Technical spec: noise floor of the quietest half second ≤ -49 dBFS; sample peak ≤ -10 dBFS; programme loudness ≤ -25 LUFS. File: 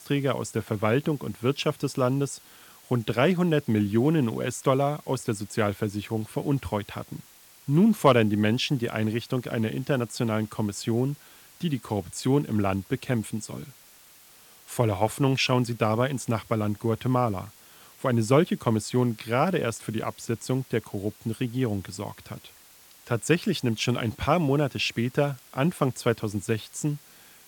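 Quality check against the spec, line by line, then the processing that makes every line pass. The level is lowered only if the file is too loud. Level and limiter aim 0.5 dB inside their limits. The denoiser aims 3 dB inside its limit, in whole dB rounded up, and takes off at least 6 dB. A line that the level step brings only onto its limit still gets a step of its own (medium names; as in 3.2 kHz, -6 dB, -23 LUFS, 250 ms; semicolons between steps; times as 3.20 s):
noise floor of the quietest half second -53 dBFS: pass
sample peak -6.0 dBFS: fail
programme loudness -26.5 LUFS: pass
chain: peak limiter -10.5 dBFS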